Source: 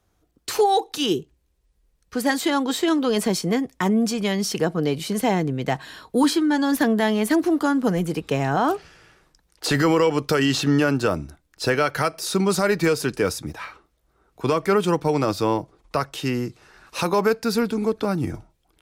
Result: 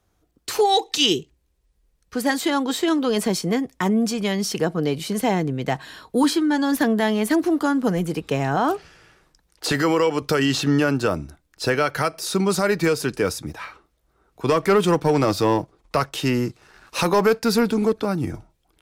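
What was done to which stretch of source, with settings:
0:00.64–0:01.29: gain on a spectral selection 1,800–8,300 Hz +8 dB
0:09.72–0:10.22: high-pass filter 200 Hz 6 dB per octave
0:14.49–0:17.93: leveller curve on the samples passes 1

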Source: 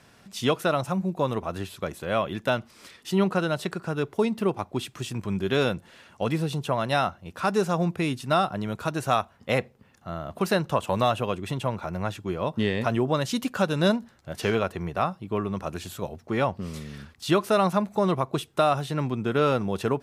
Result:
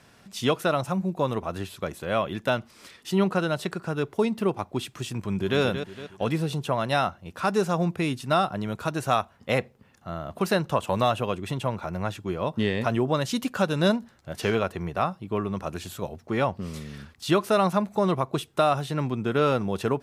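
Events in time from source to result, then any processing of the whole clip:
0:05.16–0:05.60: delay throw 230 ms, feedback 45%, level −9 dB

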